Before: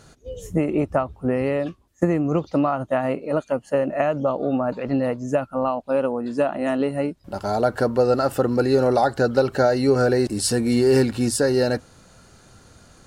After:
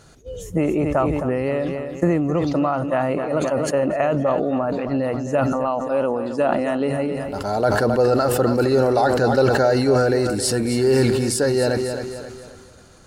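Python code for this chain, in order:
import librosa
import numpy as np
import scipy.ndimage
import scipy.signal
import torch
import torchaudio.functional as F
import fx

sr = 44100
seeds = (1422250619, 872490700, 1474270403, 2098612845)

y = fx.peak_eq(x, sr, hz=240.0, db=-3.5, octaves=0.25)
y = fx.echo_feedback(y, sr, ms=266, feedback_pct=45, wet_db=-11.5)
y = fx.sustainer(y, sr, db_per_s=27.0)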